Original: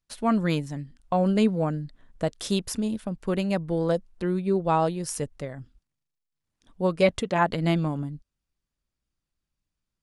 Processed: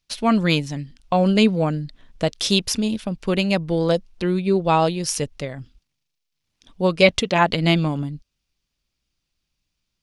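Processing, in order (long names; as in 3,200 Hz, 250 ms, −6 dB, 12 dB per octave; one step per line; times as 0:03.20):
flat-topped bell 3,700 Hz +8 dB
level +5 dB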